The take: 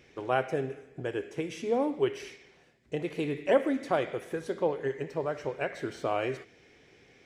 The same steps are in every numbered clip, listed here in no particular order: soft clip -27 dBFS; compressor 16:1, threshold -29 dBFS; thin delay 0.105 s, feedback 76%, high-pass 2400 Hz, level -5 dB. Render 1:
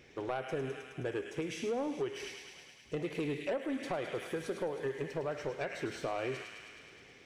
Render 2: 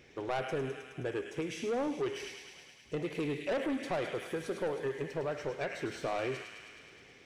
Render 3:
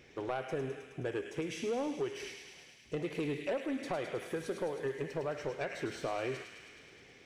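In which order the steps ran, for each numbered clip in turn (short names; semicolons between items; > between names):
thin delay > compressor > soft clip; thin delay > soft clip > compressor; compressor > thin delay > soft clip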